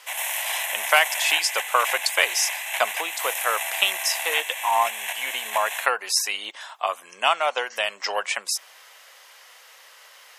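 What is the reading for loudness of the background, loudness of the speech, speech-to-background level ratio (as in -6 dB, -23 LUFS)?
-27.5 LUFS, -24.0 LUFS, 3.5 dB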